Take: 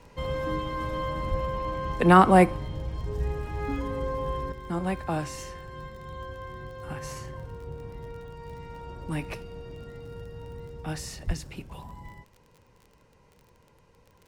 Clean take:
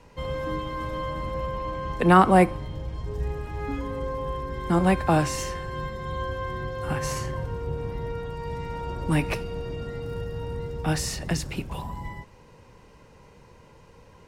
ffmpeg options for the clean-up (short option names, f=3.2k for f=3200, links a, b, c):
-filter_complex "[0:a]adeclick=t=4,asplit=3[a][b][c];[a]afade=t=out:st=1.3:d=0.02[d];[b]highpass=f=140:w=0.5412,highpass=f=140:w=1.3066,afade=t=in:st=1.3:d=0.02,afade=t=out:st=1.42:d=0.02[e];[c]afade=t=in:st=1.42:d=0.02[f];[d][e][f]amix=inputs=3:normalize=0,asplit=3[g][h][i];[g]afade=t=out:st=11.26:d=0.02[j];[h]highpass=f=140:w=0.5412,highpass=f=140:w=1.3066,afade=t=in:st=11.26:d=0.02,afade=t=out:st=11.38:d=0.02[k];[i]afade=t=in:st=11.38:d=0.02[l];[j][k][l]amix=inputs=3:normalize=0,asetnsamples=n=441:p=0,asendcmd='4.52 volume volume 8.5dB',volume=0dB"